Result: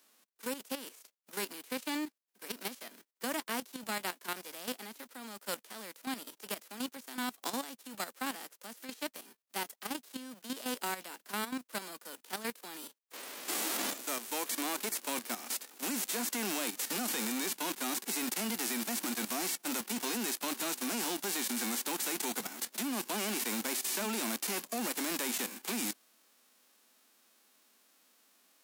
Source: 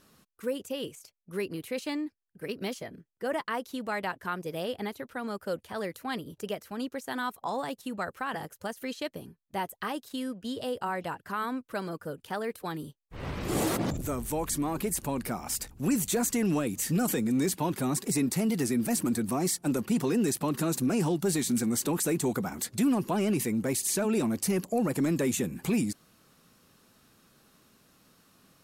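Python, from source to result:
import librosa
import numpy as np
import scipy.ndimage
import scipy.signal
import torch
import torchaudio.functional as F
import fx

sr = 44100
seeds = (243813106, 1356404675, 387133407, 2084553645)

y = fx.envelope_flatten(x, sr, power=0.3)
y = scipy.signal.sosfilt(scipy.signal.butter(8, 220.0, 'highpass', fs=sr, output='sos'), y)
y = fx.level_steps(y, sr, step_db=11)
y = F.gain(torch.from_numpy(y), -1.5).numpy()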